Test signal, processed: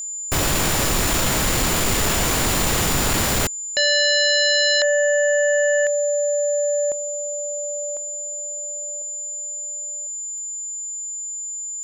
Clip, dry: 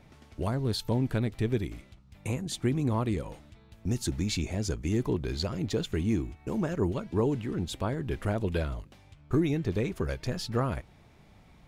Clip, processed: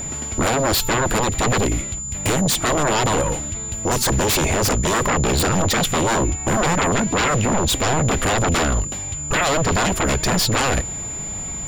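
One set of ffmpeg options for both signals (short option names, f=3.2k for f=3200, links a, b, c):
-af "aeval=exprs='0.168*sin(PI/2*7.94*val(0)/0.168)':c=same,aeval=exprs='val(0)+0.0447*sin(2*PI*7100*n/s)':c=same"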